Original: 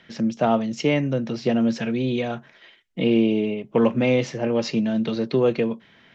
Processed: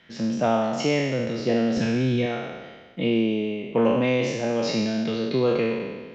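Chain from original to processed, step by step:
peak hold with a decay on every bin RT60 1.46 s
0:01.77–0:02.26: low-shelf EQ 170 Hz +11.5 dB
level −4 dB

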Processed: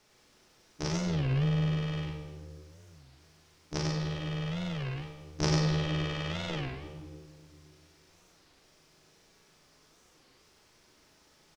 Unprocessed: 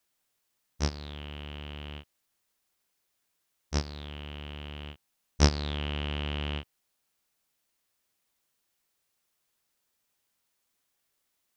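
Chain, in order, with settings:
compressor on every frequency bin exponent 0.6
0:01.08–0:01.68: low-shelf EQ 400 Hz +8 dB
0:05.95–0:06.52: high-pass filter 310 Hz 6 dB per octave
rectangular room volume 1,000 cubic metres, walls mixed, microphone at 1.4 metres
ring modulation 230 Hz
double-tracking delay 38 ms −4 dB
single-tap delay 97 ms −3 dB
wow of a warped record 33 1/3 rpm, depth 250 cents
level −6.5 dB

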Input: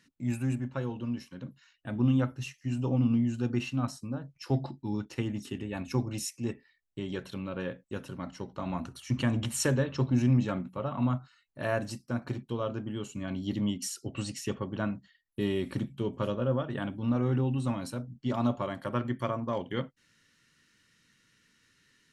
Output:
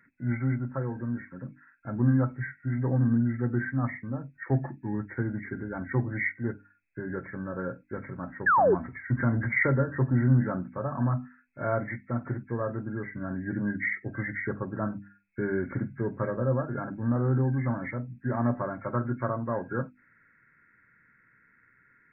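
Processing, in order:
hearing-aid frequency compression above 1,300 Hz 4 to 1
parametric band 120 Hz +2.5 dB 0.43 octaves
mains-hum notches 50/100/150/200/250/300 Hz
sound drawn into the spectrogram fall, 0:08.46–0:08.75, 340–1,800 Hz −22 dBFS
level +1.5 dB

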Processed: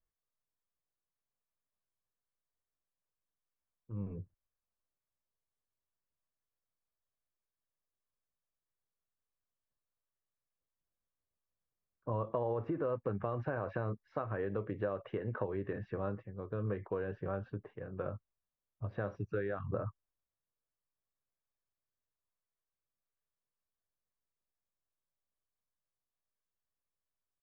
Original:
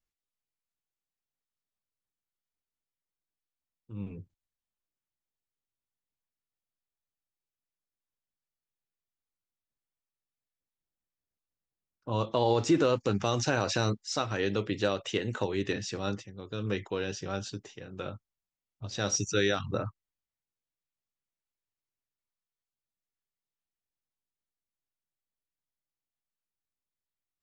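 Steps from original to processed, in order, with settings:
downward compressor 4 to 1, threshold −33 dBFS, peak gain reduction 11.5 dB
low-pass filter 1,600 Hz 24 dB per octave
comb filter 1.8 ms, depth 31%

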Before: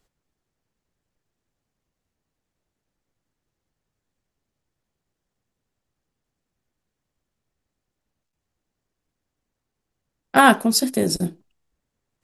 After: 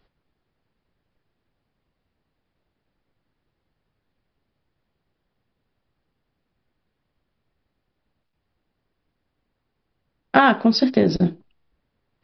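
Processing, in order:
bass and treble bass 0 dB, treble −4 dB
downward compressor 6 to 1, threshold −17 dBFS, peak gain reduction 9.5 dB
downsampling to 11,025 Hz
level +6 dB

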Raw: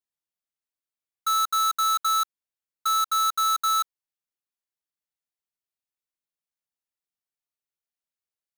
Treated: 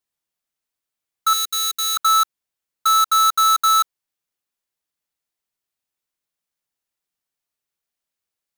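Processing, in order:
0:01.33–0:01.97: flat-topped bell 890 Hz −16 dB
level +7.5 dB

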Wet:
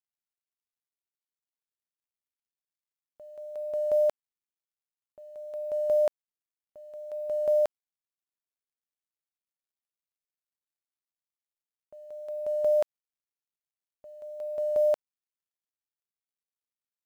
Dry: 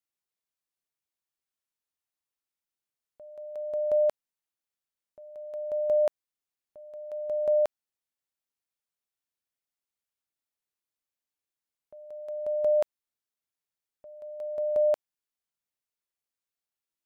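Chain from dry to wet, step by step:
log-companded quantiser 8 bits

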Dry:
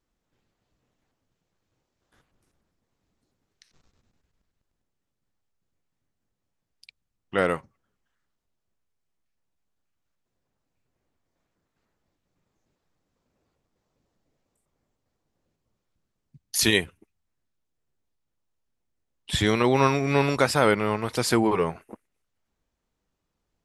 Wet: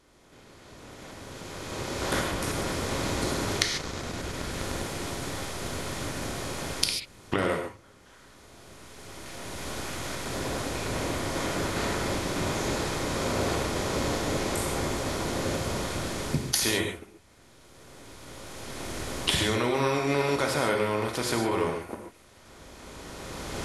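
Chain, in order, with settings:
compressor on every frequency bin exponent 0.6
camcorder AGC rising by 14 dB per second
reverb whose tail is shaped and stops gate 170 ms flat, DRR 2.5 dB
in parallel at −6.5 dB: soft clipping −5.5 dBFS, distortion −17 dB
on the sum: level −13 dB

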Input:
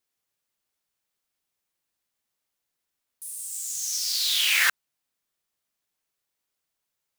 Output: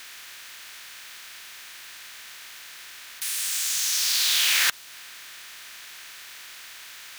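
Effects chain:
compressor on every frequency bin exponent 0.4
dynamic equaliser 1,800 Hz, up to −6 dB, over −34 dBFS, Q 0.74

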